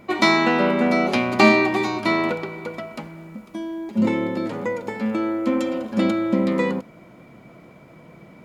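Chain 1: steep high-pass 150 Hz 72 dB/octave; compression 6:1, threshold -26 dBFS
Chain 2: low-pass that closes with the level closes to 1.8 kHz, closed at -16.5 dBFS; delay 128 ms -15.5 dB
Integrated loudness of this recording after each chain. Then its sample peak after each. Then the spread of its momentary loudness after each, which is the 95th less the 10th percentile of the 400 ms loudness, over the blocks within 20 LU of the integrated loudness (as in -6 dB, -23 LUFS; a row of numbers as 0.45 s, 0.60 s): -30.0 LUFS, -21.5 LUFS; -13.0 dBFS, -2.5 dBFS; 19 LU, 15 LU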